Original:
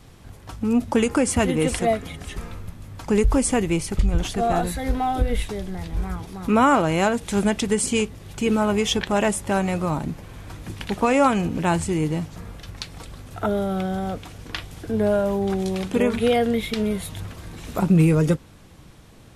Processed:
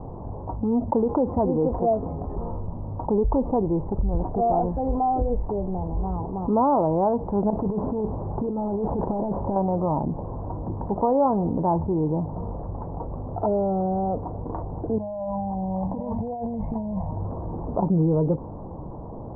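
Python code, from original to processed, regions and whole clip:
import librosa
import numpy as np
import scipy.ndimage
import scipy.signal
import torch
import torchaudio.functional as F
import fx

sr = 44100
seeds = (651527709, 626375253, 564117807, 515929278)

y = fx.chain(x, sr, fx.delta_mod(bps=32000, step_db=-38.5),
    fx.over_compress(threshold_db=-25.0, ratio=-0.5), at=(7.5, 9.56))
y = fx.chain(y, sr, fx.fixed_phaser(hz=2000.0, stages=8),
    fx.over_compress(threshold_db=-31.0, ratio=-0.5), at=(14.98, 17.11))
y = scipy.signal.sosfilt(scipy.signal.cheby1(5, 1.0, 970.0, 'lowpass', fs=sr, output='sos'), y)
y = fx.low_shelf(y, sr, hz=340.0, db=-8.0)
y = fx.env_flatten(y, sr, amount_pct=50)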